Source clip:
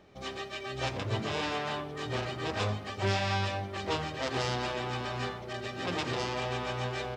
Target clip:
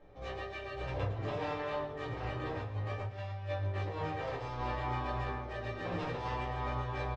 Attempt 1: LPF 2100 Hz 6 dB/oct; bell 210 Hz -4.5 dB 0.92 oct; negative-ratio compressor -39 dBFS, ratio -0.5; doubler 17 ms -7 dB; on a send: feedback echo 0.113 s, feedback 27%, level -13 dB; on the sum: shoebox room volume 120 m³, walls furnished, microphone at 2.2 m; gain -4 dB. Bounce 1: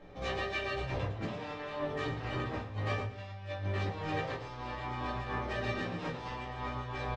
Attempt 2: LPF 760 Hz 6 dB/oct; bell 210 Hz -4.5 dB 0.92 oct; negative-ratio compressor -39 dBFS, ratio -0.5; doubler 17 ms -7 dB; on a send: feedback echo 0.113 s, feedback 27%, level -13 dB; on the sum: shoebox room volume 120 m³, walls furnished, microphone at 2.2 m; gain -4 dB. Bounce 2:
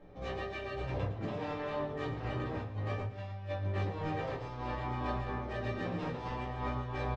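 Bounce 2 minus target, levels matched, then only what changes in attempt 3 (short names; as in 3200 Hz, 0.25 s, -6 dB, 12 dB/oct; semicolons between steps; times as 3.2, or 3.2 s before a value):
250 Hz band +3.5 dB
change: bell 210 Hz -14 dB 0.92 oct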